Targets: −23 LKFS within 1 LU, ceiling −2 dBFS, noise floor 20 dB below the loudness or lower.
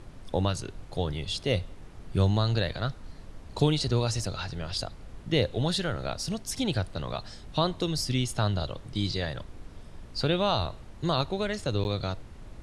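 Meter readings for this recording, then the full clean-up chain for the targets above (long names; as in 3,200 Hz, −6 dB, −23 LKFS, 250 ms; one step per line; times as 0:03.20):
number of dropouts 1; longest dropout 9.7 ms; background noise floor −47 dBFS; target noise floor −50 dBFS; integrated loudness −29.5 LKFS; sample peak −9.5 dBFS; target loudness −23.0 LKFS
→ repair the gap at 0:11.84, 9.7 ms
noise reduction from a noise print 6 dB
level +6.5 dB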